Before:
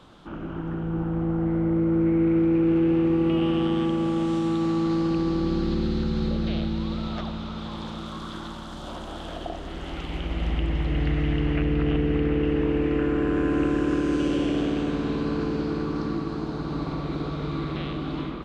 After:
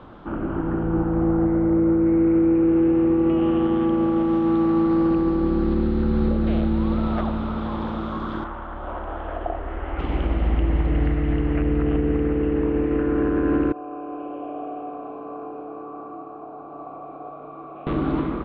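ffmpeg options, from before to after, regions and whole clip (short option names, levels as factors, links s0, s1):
-filter_complex "[0:a]asettb=1/sr,asplit=3[s0][s1][s2];[s0]atrim=end=8.444[s3];[s1]atrim=start=8.44:end=9.99,asetpts=PTS-STARTPTS,afade=t=in:d=0.004:c=qsin,afade=t=out:st=1.546:d=0.004:c=qsin,lowpass=f=2600:w=0.5412,lowpass=f=2600:w=1.3066,equalizer=f=190:w=0.93:g=-13[s4];[s2]atrim=start=9.986[s5];[s3][s4]acrossfade=d=0.004:c1=hsin:c2=qsin[s6];[s6][s5]acrossfade=d=0.004:c1=qsin:c2=hsin,asettb=1/sr,asplit=3[s7][s8][s9];[s7]atrim=end=13.724[s10];[s8]atrim=start=13.72:end=17.87,asetpts=PTS-STARTPTS,afade=t=in:d=0.004:c=qsin,afade=t=out:st=4.146:d=0.004:c=qsin,asplit=3[s11][s12][s13];[s11]bandpass=f=730:t=q:w=8,volume=1[s14];[s12]bandpass=f=1090:t=q:w=8,volume=0.501[s15];[s13]bandpass=f=2440:t=q:w=8,volume=0.355[s16];[s14][s15][s16]amix=inputs=3:normalize=0,equalizer=f=5100:w=0.35:g=-7.5,asplit=2[s17][s18];[s18]adelay=34,volume=0.501[s19];[s17][s19]amix=inputs=2:normalize=0,atrim=end_sample=183015[s20];[s9]atrim=start=17.866[s21];[s10][s20]acrossfade=d=0.004:c1=hsin:c2=qsin[s22];[s22][s21]acrossfade=d=0.004:c1=qsin:c2=hsin,lowpass=1600,equalizer=f=160:t=o:w=0.25:g=-8.5,alimiter=limit=0.0891:level=0:latency=1:release=409,volume=2.66"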